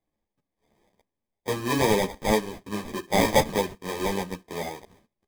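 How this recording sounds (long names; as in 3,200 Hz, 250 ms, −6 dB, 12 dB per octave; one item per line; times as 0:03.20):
aliases and images of a low sample rate 1,400 Hz, jitter 0%
a shimmering, thickened sound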